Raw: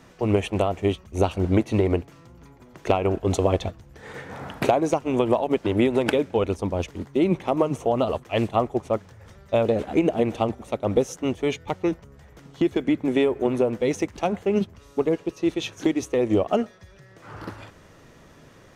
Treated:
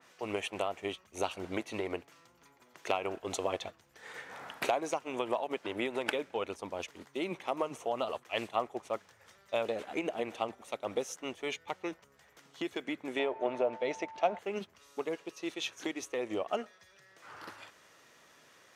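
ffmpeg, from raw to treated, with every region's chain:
-filter_complex "[0:a]asettb=1/sr,asplit=3[a][b][c];[a]atrim=end=13.194[d];[b]atrim=start=13.19:end=14.39,asetpts=PTS-STARTPTS,afade=t=in:d=0.004:c=qsin,afade=t=out:st=1.196:d=0.004:c=qsin,lowpass=4.7k,equalizer=f=640:w=3.5:g=11,aeval=exprs='val(0)+0.0141*sin(2*PI*890*n/s)':c=same[e];[c]atrim=start=14.386[f];[d][e]acrossfade=d=0.004:c1=hsin:c2=qsin[g];[g][f]acrossfade=d=0.004:c1=qsin:c2=hsin,highpass=f=1.5k:p=1,adynamicequalizer=threshold=0.00447:dfrequency=2900:dqfactor=0.7:tfrequency=2900:tqfactor=0.7:attack=5:release=100:ratio=0.375:range=2.5:mode=cutabove:tftype=highshelf,volume=-2.5dB"

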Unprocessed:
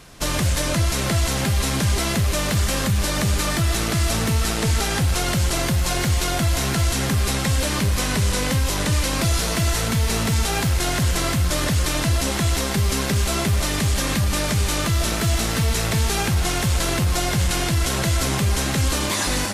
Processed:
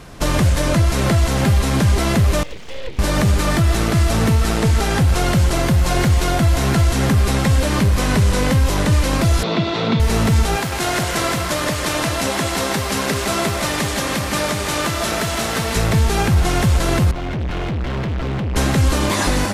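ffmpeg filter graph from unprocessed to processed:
-filter_complex "[0:a]asettb=1/sr,asplit=3[a][b][c];[a]atrim=end=2.434[d];[b]atrim=start=2.43:end=2.99,asetpts=PTS-STARTPTS,afade=t=in:d=0.004:c=qsin,afade=t=out:st=0.556:d=0.004:c=qsin,asplit=3[e][f][g];[e]bandpass=f=270:t=q:w=8,volume=0dB[h];[f]bandpass=f=2.29k:t=q:w=8,volume=-6dB[i];[g]bandpass=f=3.01k:t=q:w=8,volume=-9dB[j];[h][i][j]amix=inputs=3:normalize=0,highshelf=f=6.1k:t=q:w=3:g=-11,aeval=exprs='abs(val(0))':c=same[k];[c]atrim=start=2.986[l];[d][k]acrossfade=d=0.004:c1=hsin:c2=qsin[m];[m][l]acrossfade=d=0.004:c1=qsin:c2=hsin,asettb=1/sr,asplit=3[n][o][p];[n]atrim=end=9.434[q];[o]atrim=start=9.43:end=10,asetpts=PTS-STARTPTS,afade=t=in:d=0.004:c=qsin,afade=t=out:st=0.566:d=0.004:c=qsin,highpass=f=140:w=0.5412,highpass=f=140:w=1.3066,equalizer=f=350:t=q:w=4:g=4,equalizer=f=1.7k:t=q:w=4:g=-7,equalizer=f=3.6k:t=q:w=4:g=8,lowpass=f=4.2k:w=0.5412,lowpass=f=4.2k:w=1.3066,bandreject=f=3.1k:w=15[r];[p]atrim=start=9.996[s];[q][r]acrossfade=d=0.004:c1=hsin:c2=qsin[t];[t][s]acrossfade=d=0.004:c1=qsin:c2=hsin,asettb=1/sr,asplit=3[u][v][w];[u]atrim=end=10.564[x];[v]atrim=start=10.56:end=15.76,asetpts=PTS-STARTPTS,afade=t=in:d=0.004:c=qsin,afade=t=out:st=5.196:d=0.004:c=qsin,highpass=f=480:p=1,aecho=1:1:160:0.447,atrim=end_sample=229320[y];[w]atrim=start=15.756[z];[x][y]acrossfade=d=0.004:c1=hsin:c2=qsin[aa];[aa][z]acrossfade=d=0.004:c1=qsin:c2=hsin,asettb=1/sr,asplit=3[ab][ac][ad];[ab]atrim=end=17.114[ae];[ac]atrim=start=17.11:end=18.56,asetpts=PTS-STARTPTS,afade=t=in:d=0.004:c=qsin,afade=t=out:st=1.446:d=0.004:c=qsin,lowpass=f=3.2k:w=0.5412,lowpass=f=3.2k:w=1.3066,equalizer=f=1.1k:w=0.48:g=-4,volume=28.5dB,asoftclip=hard,volume=-28.5dB[af];[ad]atrim=start=18.556[ag];[ae][af]acrossfade=d=0.004:c1=hsin:c2=qsin[ah];[ah][ag]acrossfade=d=0.004:c1=qsin:c2=hsin,highshelf=f=2.1k:g=-9,alimiter=limit=-16dB:level=0:latency=1:release=411,volume=8.5dB"

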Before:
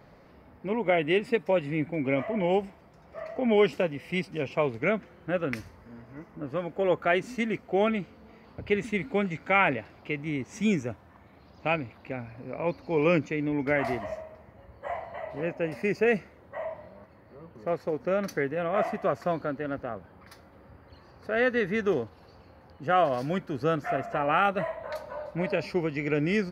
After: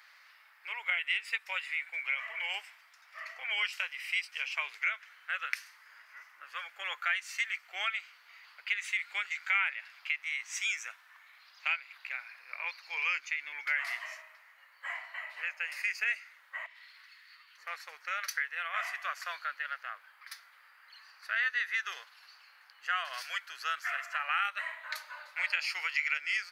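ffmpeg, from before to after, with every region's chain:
-filter_complex "[0:a]asettb=1/sr,asplit=3[a][b][c];[a]atrim=end=16.664[d];[b]atrim=start=16.66:end=17.58,asetpts=PTS-STARTPTS,afade=t=in:d=0.004:c=qsin,afade=t=out:st=0.916:d=0.004:c=qsin,acompressor=threshold=-44dB:ratio=6:attack=3.2:release=140:knee=1:detection=peak,highpass=1.4k,equalizer=f=4k:t=o:w=1.4:g=11.5[e];[c]atrim=start=17.576[f];[d][e]acrossfade=d=0.004:c1=hsin:c2=qsin[g];[g][f]acrossfade=d=0.004:c1=qsin:c2=hsin,asettb=1/sr,asplit=3[h][i][j];[h]atrim=end=25.364[k];[i]atrim=start=25.36:end=26.18,asetpts=PTS-STARTPTS,afade=t=in:d=0.004:c=qsin,afade=t=out:st=0.816:d=0.004:c=qsin,highpass=440,acontrast=38[l];[j]atrim=start=26.176[m];[k][l]acrossfade=d=0.004:c1=hsin:c2=qsin[n];[n][m]acrossfade=d=0.004:c1=qsin:c2=hsin,highpass=f=1.5k:w=0.5412,highpass=f=1.5k:w=1.3066,acompressor=threshold=-38dB:ratio=2.5,volume=7.5dB"

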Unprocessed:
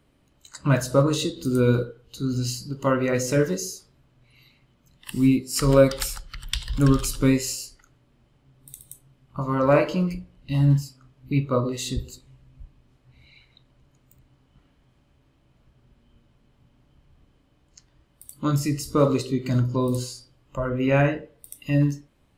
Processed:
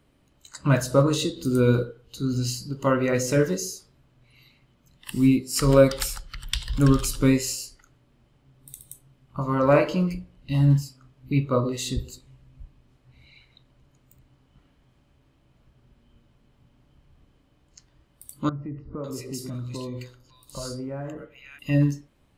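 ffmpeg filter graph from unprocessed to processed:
-filter_complex "[0:a]asettb=1/sr,asplit=3[a][b][c];[a]atrim=end=18.494[d];[b]atrim=start=18.49:end=21.59,asetpts=PTS-STARTPTS,afade=t=in:d=0.004:c=qsin,afade=t=out:st=3.096:d=0.004:c=qsin,acompressor=threshold=-32dB:ratio=4:attack=3.2:release=140:knee=1:detection=peak,acrossover=split=1600[e][f];[f]adelay=550[g];[e][g]amix=inputs=2:normalize=0,atrim=end_sample=136710[h];[c]atrim=start=21.586[i];[d][h]acrossfade=d=0.004:c1=hsin:c2=qsin[j];[j][i]acrossfade=d=0.004:c1=qsin:c2=hsin"

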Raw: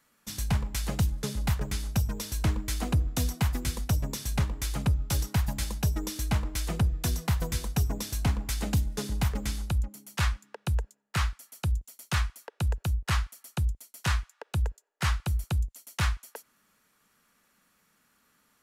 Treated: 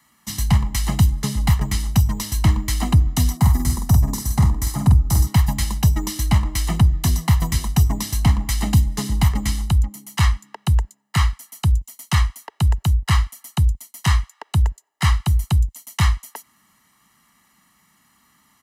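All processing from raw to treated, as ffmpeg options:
-filter_complex "[0:a]asettb=1/sr,asplit=3[a][b][c];[a]atrim=end=3.374[d];[b]atrim=start=3.37:end=5.27,asetpts=PTS-STARTPTS,afade=t=in:d=0.004:c=qsin,afade=t=out:st=1.896:d=0.004:c=qsin,equalizer=f=2.8k:w=1.1:g=-12.5,asplit=2[e][f];[f]adelay=48,volume=-4.5dB[g];[e][g]amix=inputs=2:normalize=0,atrim=end_sample=83790[h];[c]atrim=start=5.266[i];[d][h]acrossfade=d=0.004:c1=hsin:c2=qsin[j];[j][i]acrossfade=d=0.004:c1=qsin:c2=hsin,acrossover=split=360[k][l];[l]acompressor=threshold=-31dB:ratio=2[m];[k][m]amix=inputs=2:normalize=0,highpass=46,aecho=1:1:1:0.78,volume=7dB"

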